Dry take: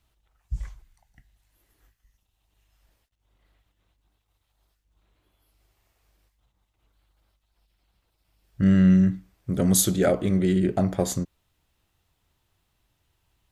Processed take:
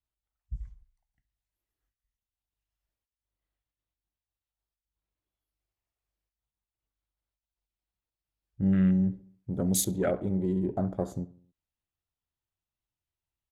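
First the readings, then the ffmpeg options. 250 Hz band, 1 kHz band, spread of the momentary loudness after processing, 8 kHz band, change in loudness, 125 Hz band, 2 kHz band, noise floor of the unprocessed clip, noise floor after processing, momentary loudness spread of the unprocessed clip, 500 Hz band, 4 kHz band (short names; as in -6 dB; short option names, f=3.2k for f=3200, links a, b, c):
-6.5 dB, -6.5 dB, 19 LU, -7.0 dB, -6.5 dB, -6.5 dB, -9.0 dB, -74 dBFS, under -85 dBFS, 19 LU, -6.5 dB, -8.5 dB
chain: -filter_complex "[0:a]afwtdn=0.0178,asplit=2[a][b];[b]adelay=68,lowpass=f=3.4k:p=1,volume=-18.5dB,asplit=2[c][d];[d]adelay=68,lowpass=f=3.4k:p=1,volume=0.51,asplit=2[e][f];[f]adelay=68,lowpass=f=3.4k:p=1,volume=0.51,asplit=2[g][h];[h]adelay=68,lowpass=f=3.4k:p=1,volume=0.51[i];[a][c][e][g][i]amix=inputs=5:normalize=0,volume=-6.5dB"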